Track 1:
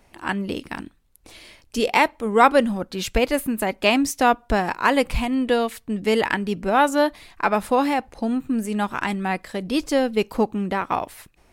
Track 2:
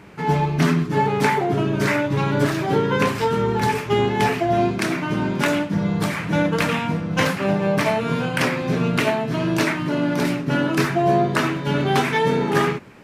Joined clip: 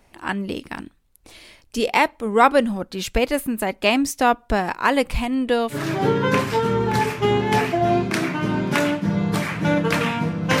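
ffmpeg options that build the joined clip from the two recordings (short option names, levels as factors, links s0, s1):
-filter_complex "[0:a]apad=whole_dur=10.6,atrim=end=10.6,atrim=end=5.89,asetpts=PTS-STARTPTS[s0];[1:a]atrim=start=2.37:end=7.28,asetpts=PTS-STARTPTS[s1];[s0][s1]acrossfade=d=0.2:c1=tri:c2=tri"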